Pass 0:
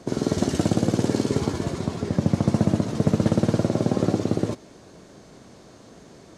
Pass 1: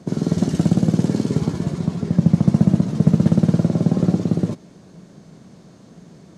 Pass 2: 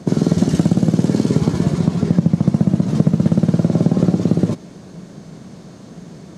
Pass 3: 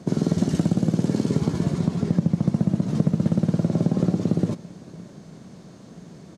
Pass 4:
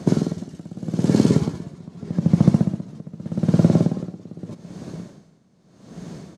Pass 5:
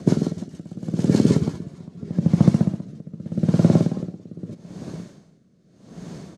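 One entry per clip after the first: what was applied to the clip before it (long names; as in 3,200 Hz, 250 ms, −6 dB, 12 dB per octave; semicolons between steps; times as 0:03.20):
parametric band 170 Hz +13.5 dB 0.88 octaves; level −3 dB
downward compressor, threshold −17 dBFS, peak gain reduction 10 dB; level +7.5 dB
single-tap delay 565 ms −22 dB; level −6.5 dB
tremolo with a sine in dB 0.82 Hz, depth 24 dB; level +7.5 dB
rotating-speaker cabinet horn 6.7 Hz, later 0.8 Hz, at 0:01.15; level +1 dB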